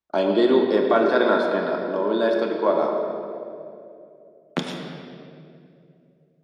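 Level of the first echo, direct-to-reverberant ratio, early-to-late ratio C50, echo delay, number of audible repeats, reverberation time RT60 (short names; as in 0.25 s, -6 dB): none, 1.0 dB, 3.0 dB, none, none, 2.7 s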